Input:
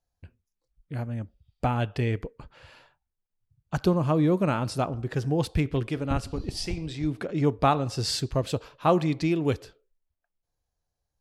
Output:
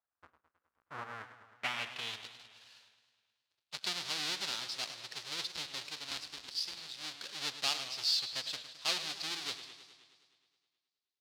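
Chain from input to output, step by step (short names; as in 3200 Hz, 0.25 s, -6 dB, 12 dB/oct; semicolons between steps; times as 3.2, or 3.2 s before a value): half-waves squared off; band-pass sweep 1300 Hz -> 4200 Hz, 1.04–2.32; warbling echo 0.105 s, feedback 67%, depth 138 cents, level -12 dB; gain -1.5 dB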